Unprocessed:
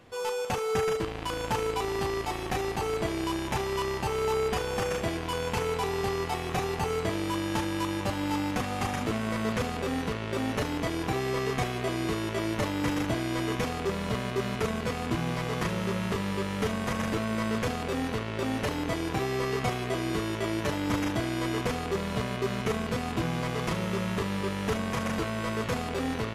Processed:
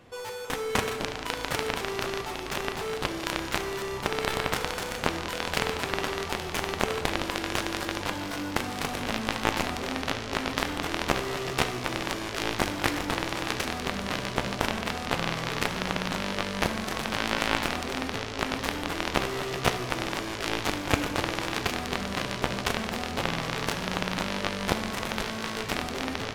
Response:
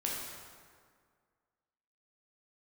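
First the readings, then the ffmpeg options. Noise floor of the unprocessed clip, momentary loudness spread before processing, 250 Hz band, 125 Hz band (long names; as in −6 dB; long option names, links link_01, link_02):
−34 dBFS, 2 LU, −3.0 dB, −4.0 dB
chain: -filter_complex "[0:a]aeval=exprs='0.158*(cos(1*acos(clip(val(0)/0.158,-1,1)))-cos(1*PI/2))+0.0708*(cos(3*acos(clip(val(0)/0.158,-1,1)))-cos(3*PI/2))':channel_layout=same,asplit=2[link_01][link_02];[1:a]atrim=start_sample=2205[link_03];[link_02][link_03]afir=irnorm=-1:irlink=0,volume=-6.5dB[link_04];[link_01][link_04]amix=inputs=2:normalize=0,volume=6.5dB"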